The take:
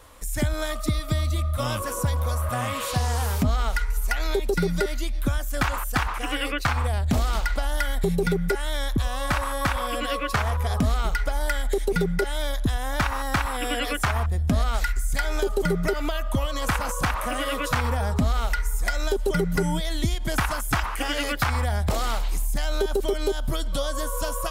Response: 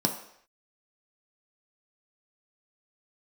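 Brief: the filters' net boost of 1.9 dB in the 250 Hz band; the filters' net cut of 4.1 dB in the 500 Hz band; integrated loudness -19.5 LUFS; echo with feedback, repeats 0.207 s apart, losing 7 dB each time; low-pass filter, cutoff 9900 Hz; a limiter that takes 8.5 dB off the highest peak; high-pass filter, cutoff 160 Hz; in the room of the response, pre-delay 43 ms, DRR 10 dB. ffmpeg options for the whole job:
-filter_complex "[0:a]highpass=160,lowpass=9.9k,equalizer=f=250:t=o:g=6.5,equalizer=f=500:t=o:g=-8,alimiter=limit=-18dB:level=0:latency=1,aecho=1:1:207|414|621|828|1035:0.447|0.201|0.0905|0.0407|0.0183,asplit=2[a][b];[1:a]atrim=start_sample=2205,adelay=43[c];[b][c]afir=irnorm=-1:irlink=0,volume=-19dB[d];[a][d]amix=inputs=2:normalize=0,volume=8dB"

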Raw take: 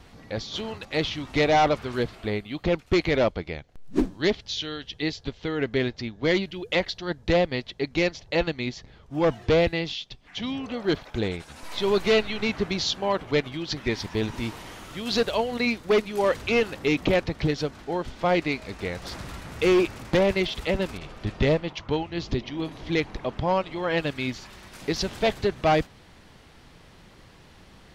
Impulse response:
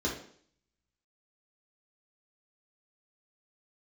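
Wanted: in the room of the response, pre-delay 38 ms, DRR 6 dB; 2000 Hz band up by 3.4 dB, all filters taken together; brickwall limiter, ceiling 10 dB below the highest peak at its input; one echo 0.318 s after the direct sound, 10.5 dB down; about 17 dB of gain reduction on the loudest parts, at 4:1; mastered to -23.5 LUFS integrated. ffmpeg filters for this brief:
-filter_complex "[0:a]equalizer=f=2k:t=o:g=4,acompressor=threshold=-38dB:ratio=4,alimiter=level_in=7dB:limit=-24dB:level=0:latency=1,volume=-7dB,aecho=1:1:318:0.299,asplit=2[a][b];[1:a]atrim=start_sample=2205,adelay=38[c];[b][c]afir=irnorm=-1:irlink=0,volume=-13dB[d];[a][d]amix=inputs=2:normalize=0,volume=15.5dB"

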